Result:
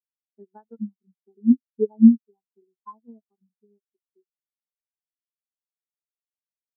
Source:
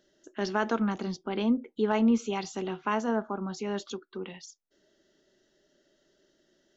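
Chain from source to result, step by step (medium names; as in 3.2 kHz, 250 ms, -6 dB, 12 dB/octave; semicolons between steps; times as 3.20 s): 3.49–3.95 s: phase dispersion highs, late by 70 ms, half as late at 820 Hz; transient shaper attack +8 dB, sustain -2 dB; spectral contrast expander 4:1; trim +3.5 dB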